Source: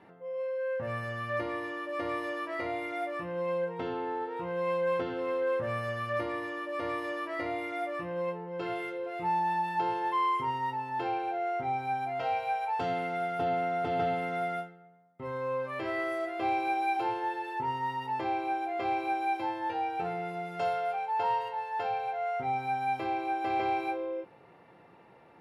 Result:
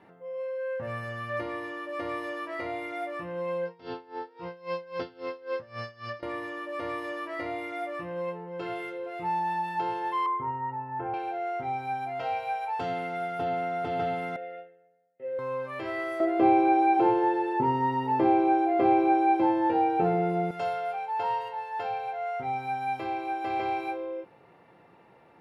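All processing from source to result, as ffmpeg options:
-filter_complex "[0:a]asettb=1/sr,asplit=3[a][b][c];[a]atrim=end=3.654[d];[b]atrim=start=3.65:end=6.23,asetpts=PTS-STARTPTS,afade=t=in:d=0.004:c=qsin,afade=t=out:st=2.576:d=0.004:c=qsin,lowpass=f=5k:t=q:w=8.3,aeval=exprs='val(0)*pow(10,-21*(0.5-0.5*cos(2*PI*3.7*n/s))/20)':c=same[e];[c]atrim=start=6.226[f];[d][e]acrossfade=d=0.004:c1=hsin:c2=qsin[g];[g][f]acrossfade=d=0.004:c1=qsin:c2=hsin,asettb=1/sr,asplit=3[h][i][j];[h]atrim=end=10.264[k];[i]atrim=start=10.26:end=11.14,asetpts=PTS-STARTPTS,afade=t=in:d=0.004:c=qsin,afade=t=out:st=0.876:d=0.004:c=qsin,lowpass=f=1.7k:w=0.5412,lowpass=f=1.7k:w=1.3066,asubboost=boost=6:cutoff=210[l];[j]atrim=start=11.136[m];[k][l]acrossfade=d=0.004:c1=hsin:c2=qsin[n];[n][m]acrossfade=d=0.004:c1=qsin:c2=hsin,asettb=1/sr,asplit=3[o][p][q];[o]atrim=end=14.364[r];[p]atrim=start=14.36:end=15.39,asetpts=PTS-STARTPTS,afade=t=in:d=0.004:c=qsin,afade=t=out:st=1.026:d=0.004:c=qsin,highshelf=f=7.8k:g=-10,acontrast=62,asplit=3[s][t][u];[s]bandpass=f=530:t=q:w=8,volume=0dB[v];[t]bandpass=f=1.84k:t=q:w=8,volume=-6dB[w];[u]bandpass=f=2.48k:t=q:w=8,volume=-9dB[x];[v][w][x]amix=inputs=3:normalize=0[y];[q]atrim=start=15.386[z];[r][y]acrossfade=d=0.004:c1=hsin:c2=qsin[aa];[aa][z]acrossfade=d=0.004:c1=qsin:c2=hsin,asettb=1/sr,asplit=3[ab][ac][ad];[ab]atrim=end=16.204[ae];[ac]atrim=start=16.2:end=20.51,asetpts=PTS-STARTPTS,afade=t=in:d=0.004:c=qsin,afade=t=out:st=4.306:d=0.004:c=qsin,equalizer=f=270:t=o:w=2.8:g=15,acrossover=split=3000[af][ag];[ag]acompressor=threshold=-56dB:ratio=4:attack=1:release=60[ah];[af][ah]amix=inputs=2:normalize=0[ai];[ad]atrim=start=20.506[aj];[ae][ai]acrossfade=d=0.004:c1=hsin:c2=qsin[ak];[ak][aj]acrossfade=d=0.004:c1=qsin:c2=hsin"

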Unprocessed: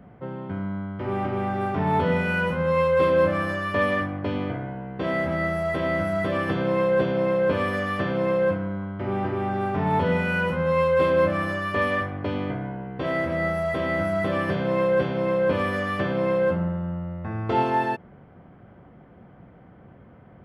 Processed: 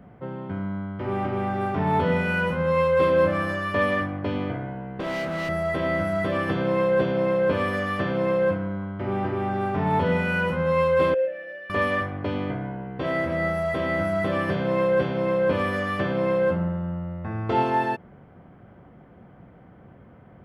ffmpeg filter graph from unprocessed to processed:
-filter_complex "[0:a]asettb=1/sr,asplit=3[a][b][c];[a]atrim=end=5.004[d];[b]atrim=start=5:end=5.49,asetpts=PTS-STARTPTS,afade=t=in:d=0.004:c=qsin,afade=t=out:st=0.486:d=0.004:c=qsin,highpass=140,volume=25.5dB,asoftclip=hard,volume=-25.5dB[e];[c]atrim=start=5.486[f];[d][e]acrossfade=d=0.004:c1=hsin:c2=qsin[g];[g][f]acrossfade=d=0.004:c1=qsin:c2=hsin,asettb=1/sr,asplit=3[h][i][j];[h]atrim=end=11.144[k];[i]atrim=start=11.14:end=11.7,asetpts=PTS-STARTPTS,afade=t=in:d=0.004:c=qsin,afade=t=out:st=0.556:d=0.004:c=qsin,asplit=3[l][m][n];[l]bandpass=f=530:t=q:w=8,volume=0dB[o];[m]bandpass=f=1.84k:t=q:w=8,volume=-6dB[p];[n]bandpass=f=2.48k:t=q:w=8,volume=-9dB[q];[o][p][q]amix=inputs=3:normalize=0,lowshelf=f=280:g=-11[r];[j]atrim=start=11.696[s];[k][r]acrossfade=d=0.004:c1=hsin:c2=qsin[t];[t][s]acrossfade=d=0.004:c1=qsin:c2=hsin"

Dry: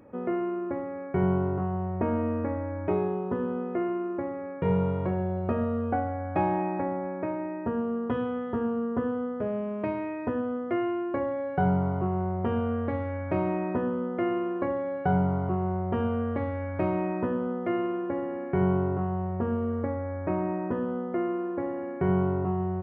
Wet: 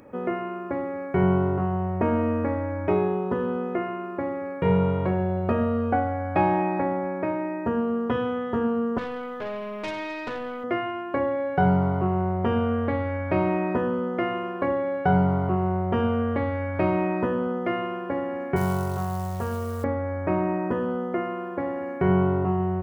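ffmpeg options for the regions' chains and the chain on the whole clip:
-filter_complex "[0:a]asettb=1/sr,asplit=3[a][b][c];[a]atrim=end=8.984[d];[b]atrim=start=8.98:end=10.64,asetpts=PTS-STARTPTS,afade=t=in:d=0.004:c=qsin,afade=t=out:st=1.656:d=0.004:c=qsin,tiltshelf=f=780:g=-6.5,aeval=exprs='(tanh(39.8*val(0)+0.3)-tanh(0.3))/39.8':c=same[e];[c]atrim=start=10.636[f];[d][e]acrossfade=d=0.004:c1=hsin:c2=qsin[g];[g][f]acrossfade=d=0.004:c1=qsin:c2=hsin,asettb=1/sr,asplit=3[h][i][j];[h]atrim=end=18.564[k];[i]atrim=start=18.56:end=19.84,asetpts=PTS-STARTPTS,afade=t=in:d=0.004:c=qsin,afade=t=out:st=1.276:d=0.004:c=qsin,equalizer=f=290:w=1.6:g=-15,acrusher=bits=7:mode=log:mix=0:aa=0.000001[l];[j]atrim=start=19.836[m];[k][l]acrossfade=d=0.004:c1=hsin:c2=qsin[n];[n][m]acrossfade=d=0.004:c1=qsin:c2=hsin,highshelf=f=2.4k:g=8.5,bandreject=f=50:t=h:w=6,bandreject=f=100:t=h:w=6,bandreject=f=150:t=h:w=6,bandreject=f=200:t=h:w=6,bandreject=f=250:t=h:w=6,bandreject=f=300:t=h:w=6,bandreject=f=350:t=h:w=6,volume=4dB"

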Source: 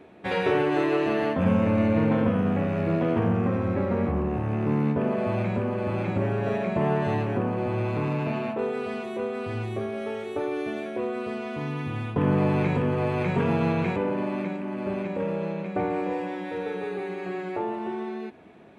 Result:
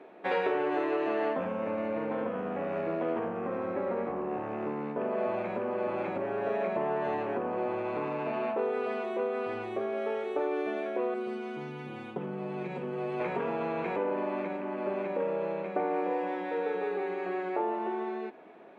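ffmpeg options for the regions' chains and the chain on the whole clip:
-filter_complex "[0:a]asettb=1/sr,asplit=3[a][b][c];[a]atrim=end=11.144[d];[b]atrim=start=11.14:end=13.2,asetpts=PTS-STARTPTS,afade=t=in:d=0.004:c=qsin,afade=t=out:st=2.056:d=0.004:c=qsin,equalizer=f=1.1k:w=0.42:g=-10.5,aecho=1:1:5.4:0.99,atrim=end_sample=90846[e];[c]atrim=start=13.196[f];[d][e]acrossfade=d=0.004:c1=hsin:c2=qsin[g];[g][f]acrossfade=d=0.004:c1=qsin:c2=hsin,lowpass=f=1.3k:p=1,acompressor=threshold=-26dB:ratio=6,highpass=420,volume=3.5dB"

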